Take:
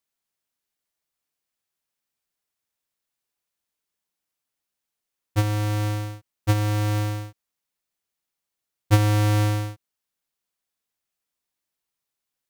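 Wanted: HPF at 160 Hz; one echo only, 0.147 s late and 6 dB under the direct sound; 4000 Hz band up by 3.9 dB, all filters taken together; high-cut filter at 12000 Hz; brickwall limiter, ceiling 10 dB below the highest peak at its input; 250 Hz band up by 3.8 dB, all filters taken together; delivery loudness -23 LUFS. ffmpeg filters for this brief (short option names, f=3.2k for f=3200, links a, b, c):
-af "highpass=160,lowpass=12k,equalizer=f=250:t=o:g=6,equalizer=f=4k:t=o:g=5,alimiter=limit=-13dB:level=0:latency=1,aecho=1:1:147:0.501,volume=5dB"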